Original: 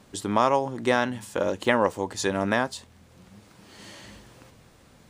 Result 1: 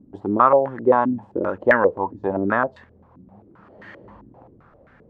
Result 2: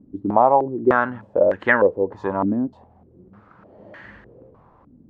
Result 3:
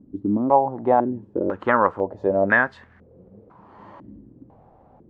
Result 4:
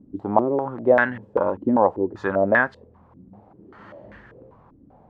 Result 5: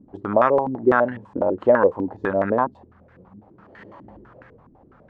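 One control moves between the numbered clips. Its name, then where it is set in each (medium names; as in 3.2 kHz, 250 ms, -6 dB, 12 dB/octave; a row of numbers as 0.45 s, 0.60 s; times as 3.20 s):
step-sequenced low-pass, rate: 7.6 Hz, 3.3 Hz, 2 Hz, 5.1 Hz, 12 Hz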